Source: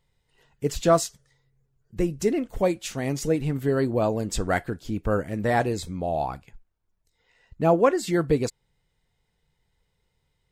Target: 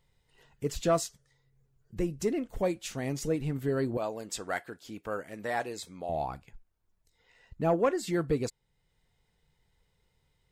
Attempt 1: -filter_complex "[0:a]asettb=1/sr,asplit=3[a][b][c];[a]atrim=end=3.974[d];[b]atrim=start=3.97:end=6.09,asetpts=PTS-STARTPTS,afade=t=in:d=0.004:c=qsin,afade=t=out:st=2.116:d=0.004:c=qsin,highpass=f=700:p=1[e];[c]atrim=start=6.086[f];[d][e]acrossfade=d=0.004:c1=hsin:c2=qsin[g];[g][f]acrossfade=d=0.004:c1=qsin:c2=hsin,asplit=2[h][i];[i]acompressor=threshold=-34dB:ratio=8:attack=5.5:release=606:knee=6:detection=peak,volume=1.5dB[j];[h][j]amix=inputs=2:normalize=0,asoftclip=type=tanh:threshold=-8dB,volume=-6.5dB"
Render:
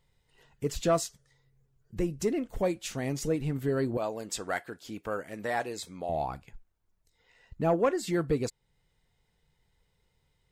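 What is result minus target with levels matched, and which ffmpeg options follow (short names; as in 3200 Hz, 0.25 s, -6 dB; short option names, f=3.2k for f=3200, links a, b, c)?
compressor: peak gain reduction -8 dB
-filter_complex "[0:a]asettb=1/sr,asplit=3[a][b][c];[a]atrim=end=3.974[d];[b]atrim=start=3.97:end=6.09,asetpts=PTS-STARTPTS,afade=t=in:d=0.004:c=qsin,afade=t=out:st=2.116:d=0.004:c=qsin,highpass=f=700:p=1[e];[c]atrim=start=6.086[f];[d][e]acrossfade=d=0.004:c1=hsin:c2=qsin[g];[g][f]acrossfade=d=0.004:c1=qsin:c2=hsin,asplit=2[h][i];[i]acompressor=threshold=-43dB:ratio=8:attack=5.5:release=606:knee=6:detection=peak,volume=1.5dB[j];[h][j]amix=inputs=2:normalize=0,asoftclip=type=tanh:threshold=-8dB,volume=-6.5dB"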